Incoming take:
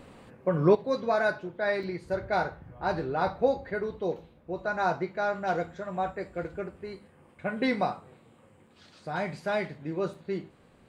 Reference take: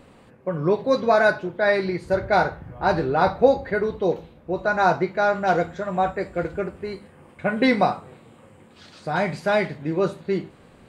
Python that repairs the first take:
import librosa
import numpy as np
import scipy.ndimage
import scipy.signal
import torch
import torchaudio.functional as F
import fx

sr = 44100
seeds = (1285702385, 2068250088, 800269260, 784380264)

y = fx.fix_interpolate(x, sr, at_s=(1.83, 8.67, 10.14), length_ms=3.9)
y = fx.gain(y, sr, db=fx.steps((0.0, 0.0), (0.75, 8.5)))